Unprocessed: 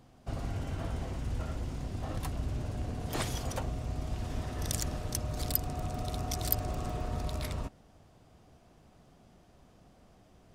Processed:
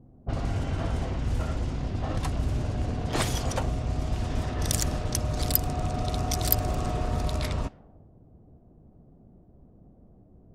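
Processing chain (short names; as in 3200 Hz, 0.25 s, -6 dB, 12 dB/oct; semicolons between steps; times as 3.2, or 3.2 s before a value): low-pass opened by the level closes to 340 Hz, open at -29.5 dBFS; gain +7 dB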